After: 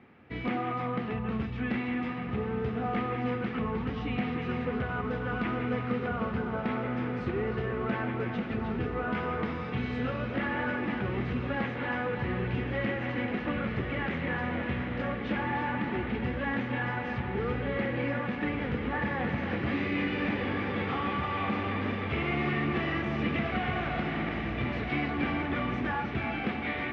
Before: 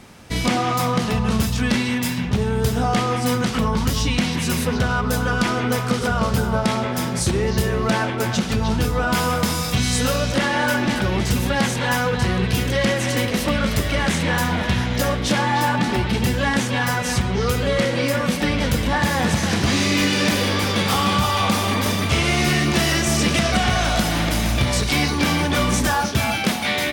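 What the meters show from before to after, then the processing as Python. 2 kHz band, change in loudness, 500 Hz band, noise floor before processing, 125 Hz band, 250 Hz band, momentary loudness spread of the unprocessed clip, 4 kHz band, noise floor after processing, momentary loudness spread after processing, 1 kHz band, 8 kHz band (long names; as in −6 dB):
−10.5 dB, −11.5 dB, −10.0 dB, −24 dBFS, −12.5 dB, −9.5 dB, 3 LU, −20.5 dB, −35 dBFS, 3 LU, −11.0 dB, below −40 dB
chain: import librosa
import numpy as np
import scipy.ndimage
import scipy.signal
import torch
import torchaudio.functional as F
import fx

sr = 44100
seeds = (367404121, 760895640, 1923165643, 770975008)

y = fx.cabinet(x, sr, low_hz=100.0, low_slope=12, high_hz=2300.0, hz=(110.0, 180.0, 600.0, 970.0, 1500.0), db=(-5, -7, -7, -7, -4))
y = fx.echo_diffused(y, sr, ms=1458, feedback_pct=48, wet_db=-7)
y = y * 10.0 ** (-8.0 / 20.0)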